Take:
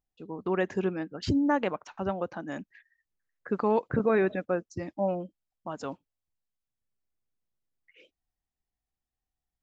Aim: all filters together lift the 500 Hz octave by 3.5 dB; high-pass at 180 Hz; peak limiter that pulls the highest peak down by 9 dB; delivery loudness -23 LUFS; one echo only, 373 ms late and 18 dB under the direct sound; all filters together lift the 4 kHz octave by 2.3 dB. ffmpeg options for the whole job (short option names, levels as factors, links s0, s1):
-af "highpass=180,equalizer=f=500:t=o:g=4.5,equalizer=f=4000:t=o:g=3,alimiter=limit=0.0944:level=0:latency=1,aecho=1:1:373:0.126,volume=2.82"